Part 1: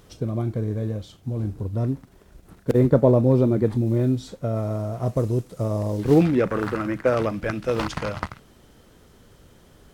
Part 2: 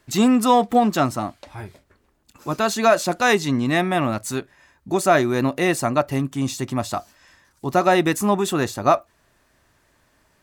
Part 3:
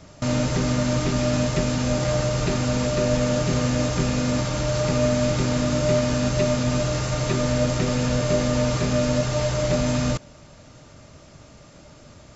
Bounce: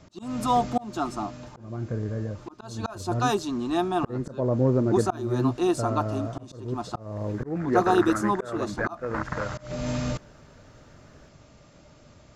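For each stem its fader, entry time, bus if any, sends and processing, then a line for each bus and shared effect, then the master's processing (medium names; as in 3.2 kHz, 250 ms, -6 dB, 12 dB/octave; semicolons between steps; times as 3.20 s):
-4.0 dB, 1.35 s, no send, resonant high shelf 2.3 kHz -11 dB, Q 3
-3.5 dB, 0.00 s, no send, level-controlled noise filter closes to 2.5 kHz, open at -13 dBFS; static phaser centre 550 Hz, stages 6; comb 5.7 ms, depth 40%
-5.5 dB, 0.00 s, no send, auto duck -19 dB, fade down 1.80 s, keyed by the second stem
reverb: none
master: treble shelf 6.8 kHz -6.5 dB; slow attack 328 ms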